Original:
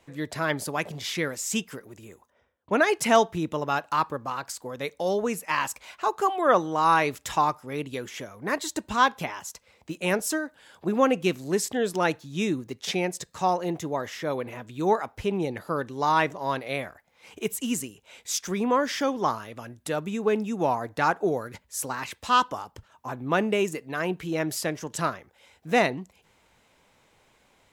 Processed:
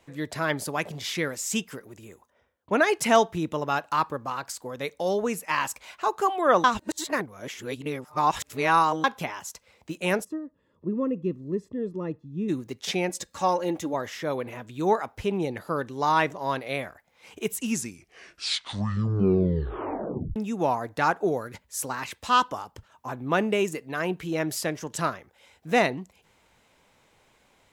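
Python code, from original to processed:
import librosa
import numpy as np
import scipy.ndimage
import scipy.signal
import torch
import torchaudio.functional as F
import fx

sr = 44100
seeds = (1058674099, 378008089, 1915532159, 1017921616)

y = fx.moving_average(x, sr, points=58, at=(10.23, 12.48), fade=0.02)
y = fx.comb(y, sr, ms=3.6, depth=0.6, at=(13.09, 13.94))
y = fx.edit(y, sr, fx.reverse_span(start_s=6.64, length_s=2.4),
    fx.tape_stop(start_s=17.53, length_s=2.83), tone=tone)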